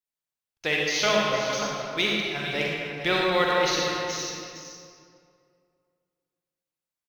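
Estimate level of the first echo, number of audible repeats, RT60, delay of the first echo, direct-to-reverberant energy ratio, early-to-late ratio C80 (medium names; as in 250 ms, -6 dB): -9.5 dB, 1, 2.3 s, 460 ms, -3.5 dB, -1.0 dB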